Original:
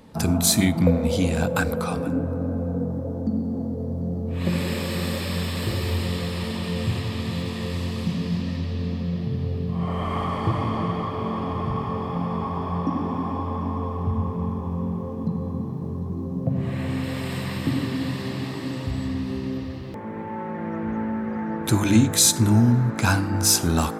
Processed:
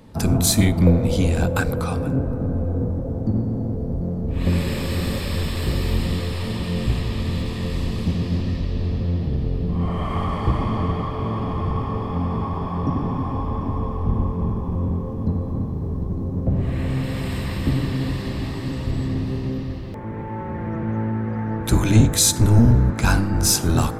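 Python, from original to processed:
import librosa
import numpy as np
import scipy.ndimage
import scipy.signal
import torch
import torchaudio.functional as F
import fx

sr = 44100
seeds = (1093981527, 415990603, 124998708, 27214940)

y = fx.octave_divider(x, sr, octaves=1, level_db=2.0)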